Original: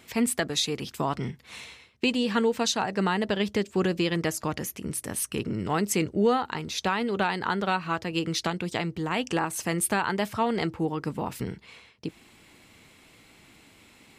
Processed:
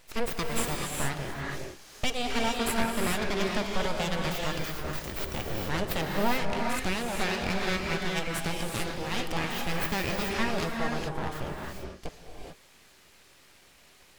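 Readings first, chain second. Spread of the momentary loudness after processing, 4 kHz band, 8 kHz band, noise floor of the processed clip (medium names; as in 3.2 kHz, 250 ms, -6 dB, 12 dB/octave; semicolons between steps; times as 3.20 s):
9 LU, -1.5 dB, -5.0 dB, -57 dBFS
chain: full-wave rectifier; gated-style reverb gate 460 ms rising, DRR 0 dB; trim -1.5 dB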